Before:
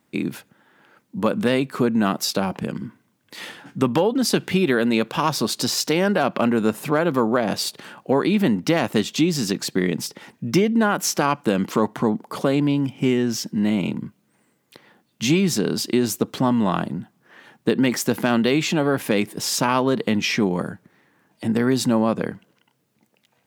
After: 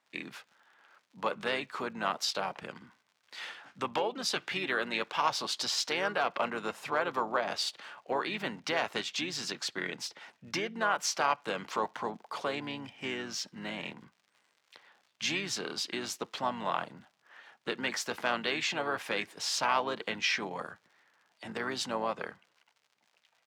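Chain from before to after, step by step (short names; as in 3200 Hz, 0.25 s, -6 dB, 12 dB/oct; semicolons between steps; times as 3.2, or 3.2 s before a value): crackle 94/s -43 dBFS; three-band isolator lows -19 dB, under 590 Hz, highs -16 dB, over 6900 Hz; harmoniser -4 st -9 dB; gain -6 dB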